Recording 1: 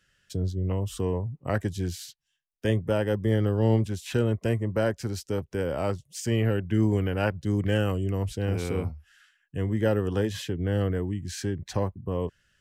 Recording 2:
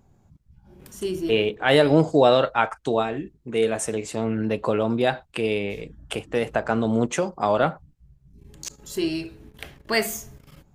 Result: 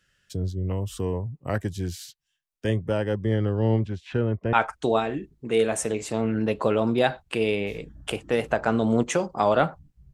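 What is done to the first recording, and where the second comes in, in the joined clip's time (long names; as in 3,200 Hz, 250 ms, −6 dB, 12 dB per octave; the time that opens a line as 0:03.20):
recording 1
0:02.61–0:04.53: low-pass filter 10,000 Hz → 1,800 Hz
0:04.53: continue with recording 2 from 0:02.56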